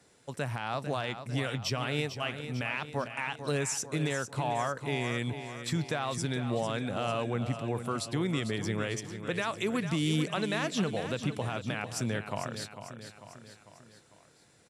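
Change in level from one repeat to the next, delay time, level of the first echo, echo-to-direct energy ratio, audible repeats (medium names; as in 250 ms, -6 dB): -5.5 dB, 448 ms, -10.0 dB, -8.5 dB, 4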